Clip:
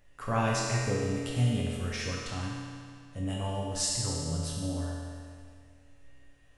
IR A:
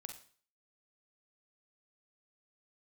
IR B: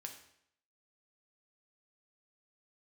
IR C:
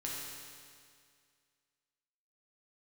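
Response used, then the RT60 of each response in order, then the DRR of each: C; 0.45, 0.70, 2.1 s; 5.0, 3.0, -4.5 dB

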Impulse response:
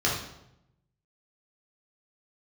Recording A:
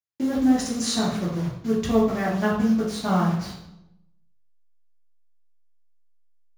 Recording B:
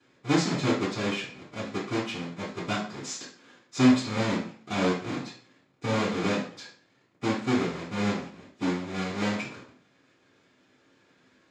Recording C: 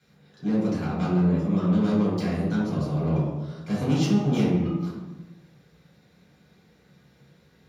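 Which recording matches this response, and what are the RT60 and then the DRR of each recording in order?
A; 0.80, 0.50, 1.2 s; -5.0, -18.0, -9.5 dB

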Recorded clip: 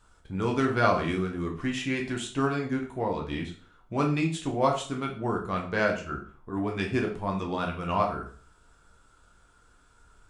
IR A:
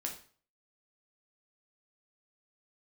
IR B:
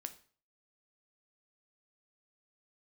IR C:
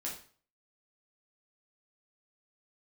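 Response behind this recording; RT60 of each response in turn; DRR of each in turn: A; 0.45, 0.45, 0.45 s; 0.5, 8.5, -4.5 dB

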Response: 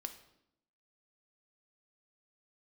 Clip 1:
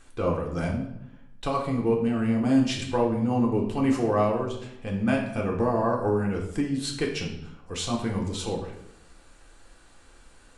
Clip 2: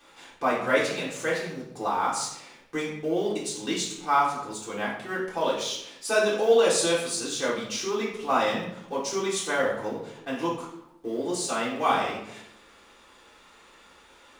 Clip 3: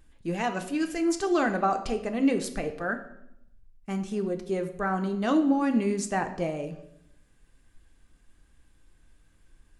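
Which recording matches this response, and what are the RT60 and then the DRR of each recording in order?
3; 0.80, 0.80, 0.80 s; -1.0, -8.0, 6.0 dB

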